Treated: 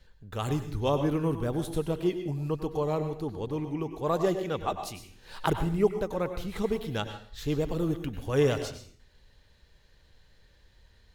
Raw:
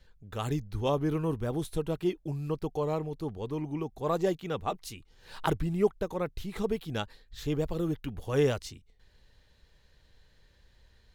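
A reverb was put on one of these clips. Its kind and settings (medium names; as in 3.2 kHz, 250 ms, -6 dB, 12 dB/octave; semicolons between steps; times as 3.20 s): plate-style reverb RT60 0.5 s, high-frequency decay 0.95×, pre-delay 85 ms, DRR 8 dB; trim +1.5 dB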